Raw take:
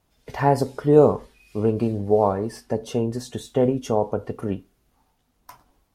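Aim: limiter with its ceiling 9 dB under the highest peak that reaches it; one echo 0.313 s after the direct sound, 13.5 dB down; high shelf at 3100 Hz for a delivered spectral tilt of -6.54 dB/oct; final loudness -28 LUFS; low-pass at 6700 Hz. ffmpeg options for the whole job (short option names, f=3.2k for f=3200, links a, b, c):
-af "lowpass=6.7k,highshelf=f=3.1k:g=7.5,alimiter=limit=-11.5dB:level=0:latency=1,aecho=1:1:313:0.211,volume=-2.5dB"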